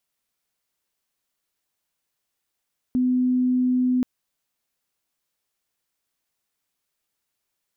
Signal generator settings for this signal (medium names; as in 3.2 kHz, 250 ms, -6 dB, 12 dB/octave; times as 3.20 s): tone sine 252 Hz -17.5 dBFS 1.08 s